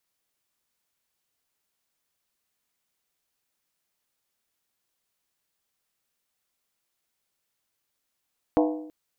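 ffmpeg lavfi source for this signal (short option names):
-f lavfi -i "aevalsrc='0.133*pow(10,-3*t/0.79)*sin(2*PI*308*t)+0.0944*pow(10,-3*t/0.626)*sin(2*PI*491*t)+0.0668*pow(10,-3*t/0.541)*sin(2*PI*657.9*t)+0.0473*pow(10,-3*t/0.521)*sin(2*PI*707.2*t)+0.0335*pow(10,-3*t/0.485)*sin(2*PI*817.1*t)+0.0237*pow(10,-3*t/0.462)*sin(2*PI*898.7*t)+0.0168*pow(10,-3*t/0.445)*sin(2*PI*972*t)+0.0119*pow(10,-3*t/0.422)*sin(2*PI*1078.3*t)':d=0.33:s=44100"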